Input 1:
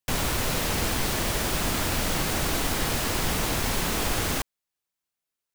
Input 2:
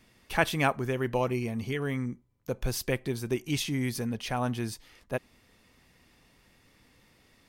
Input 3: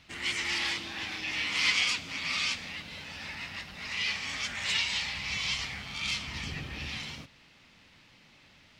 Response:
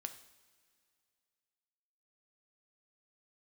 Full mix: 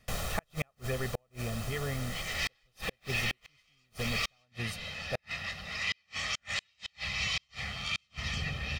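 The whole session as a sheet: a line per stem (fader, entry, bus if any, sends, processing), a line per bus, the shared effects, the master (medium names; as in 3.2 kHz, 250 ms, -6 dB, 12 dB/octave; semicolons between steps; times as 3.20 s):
-9.0 dB, 0.00 s, no send, auto duck -7 dB, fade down 0.80 s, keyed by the second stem
-4.5 dB, 0.00 s, no send, none
-12.5 dB, 1.90 s, no send, level rider gain up to 13 dB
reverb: none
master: treble shelf 9.6 kHz -3.5 dB; comb 1.6 ms, depth 72%; inverted gate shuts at -20 dBFS, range -41 dB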